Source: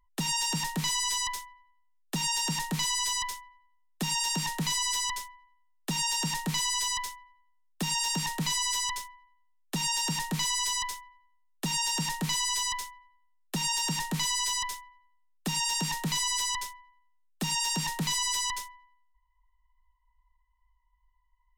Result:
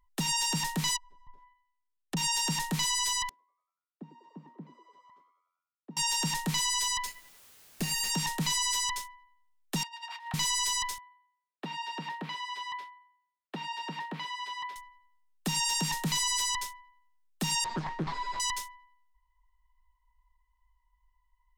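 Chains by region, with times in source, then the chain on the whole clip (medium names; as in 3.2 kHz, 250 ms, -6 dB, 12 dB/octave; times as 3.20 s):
0.96–2.17 s: low-pass that closes with the level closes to 420 Hz, closed at -30 dBFS + upward expansion, over -55 dBFS
3.29–5.97 s: ladder band-pass 320 Hz, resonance 30% + frequency-shifting echo 96 ms, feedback 53%, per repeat +86 Hz, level -14.5 dB
7.06–8.10 s: comb filter that takes the minimum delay 0.44 ms + added noise white -57 dBFS
9.83–10.34 s: steep high-pass 680 Hz 96 dB/octave + distance through air 400 m + compressor with a negative ratio -42 dBFS, ratio -0.5
10.98–14.76 s: high-pass 290 Hz + distance through air 400 m
17.64–18.40 s: median filter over 15 samples + distance through air 150 m + loudspeaker Doppler distortion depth 0.96 ms
whole clip: none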